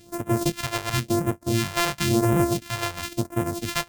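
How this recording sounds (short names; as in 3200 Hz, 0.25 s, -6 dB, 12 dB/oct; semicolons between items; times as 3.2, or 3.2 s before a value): a buzz of ramps at a fixed pitch in blocks of 128 samples; phasing stages 2, 0.96 Hz, lowest notch 200–4200 Hz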